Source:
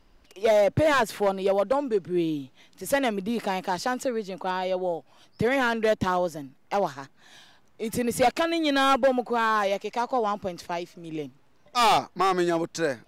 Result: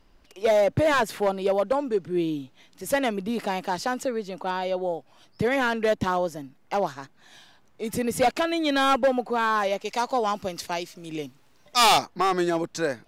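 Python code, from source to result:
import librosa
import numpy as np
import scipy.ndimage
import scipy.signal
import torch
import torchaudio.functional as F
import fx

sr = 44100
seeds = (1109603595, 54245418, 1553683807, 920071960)

y = fx.high_shelf(x, sr, hz=2500.0, db=9.5, at=(9.85, 12.06))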